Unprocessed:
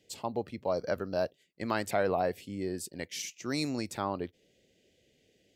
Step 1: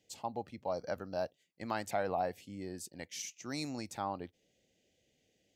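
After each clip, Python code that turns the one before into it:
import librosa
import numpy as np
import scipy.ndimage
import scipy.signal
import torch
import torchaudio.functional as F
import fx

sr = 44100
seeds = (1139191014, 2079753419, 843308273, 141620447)

y = fx.graphic_eq_31(x, sr, hz=(400, 800, 6300), db=(-5, 7, 5))
y = F.gain(torch.from_numpy(y), -6.5).numpy()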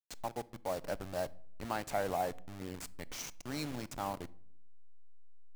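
y = fx.delta_hold(x, sr, step_db=-39.0)
y = fx.room_shoebox(y, sr, seeds[0], volume_m3=1000.0, walls='furnished', distance_m=0.32)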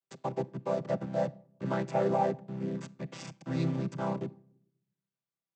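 y = fx.chord_vocoder(x, sr, chord='major triad', root=48)
y = F.gain(torch.from_numpy(y), 8.0).numpy()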